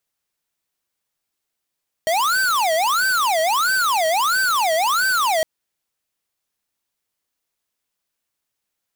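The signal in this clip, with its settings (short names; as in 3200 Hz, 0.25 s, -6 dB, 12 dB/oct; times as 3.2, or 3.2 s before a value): siren wail 634–1550 Hz 1.5/s square -18.5 dBFS 3.36 s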